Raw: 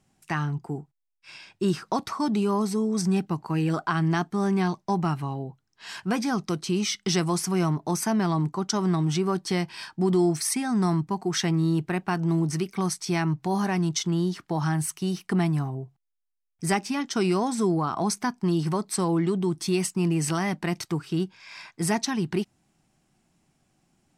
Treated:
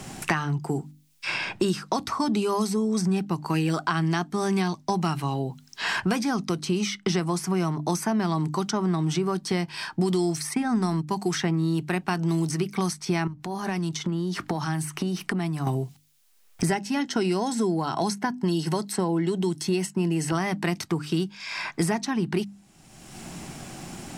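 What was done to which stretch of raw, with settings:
10.46–11.08 transient shaper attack +6 dB, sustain -6 dB
13.27–15.67 compressor 5:1, threshold -38 dBFS
16.69–20.32 notch comb 1200 Hz
whole clip: notches 50/100/150/200/250/300 Hz; three-band squash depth 100%

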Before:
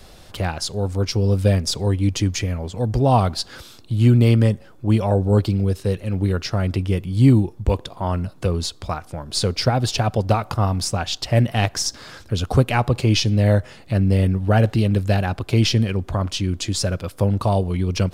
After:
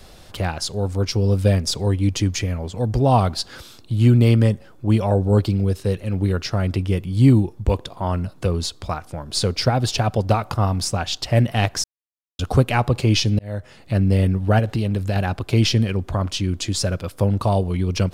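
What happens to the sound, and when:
11.84–12.39 mute
13.39–13.94 fade in
14.59–15.16 compressor, threshold -17 dBFS

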